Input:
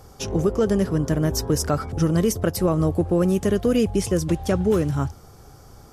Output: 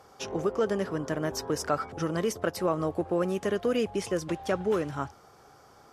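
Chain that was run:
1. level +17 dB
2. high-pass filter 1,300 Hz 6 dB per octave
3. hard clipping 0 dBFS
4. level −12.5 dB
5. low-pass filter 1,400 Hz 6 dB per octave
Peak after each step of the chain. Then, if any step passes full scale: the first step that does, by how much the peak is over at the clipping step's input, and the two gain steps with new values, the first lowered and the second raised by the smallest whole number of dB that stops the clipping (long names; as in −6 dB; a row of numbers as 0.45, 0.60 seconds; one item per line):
+6.0, +4.0, 0.0, −12.5, −13.5 dBFS
step 1, 4.0 dB
step 1 +13 dB, step 4 −8.5 dB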